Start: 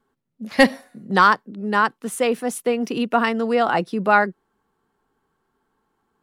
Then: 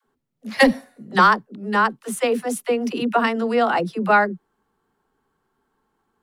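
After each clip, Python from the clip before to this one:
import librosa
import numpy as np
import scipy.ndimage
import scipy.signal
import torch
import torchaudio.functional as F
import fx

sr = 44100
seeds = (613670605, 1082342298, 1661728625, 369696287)

y = fx.dispersion(x, sr, late='lows', ms=67.0, hz=320.0)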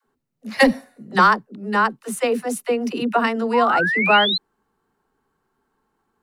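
y = fx.notch(x, sr, hz=3300.0, q=14.0)
y = fx.spec_paint(y, sr, seeds[0], shape='rise', start_s=3.53, length_s=0.85, low_hz=910.0, high_hz=4200.0, level_db=-21.0)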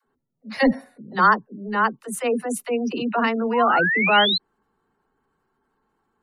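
y = fx.transient(x, sr, attack_db=-8, sustain_db=0)
y = fx.spec_gate(y, sr, threshold_db=-30, keep='strong')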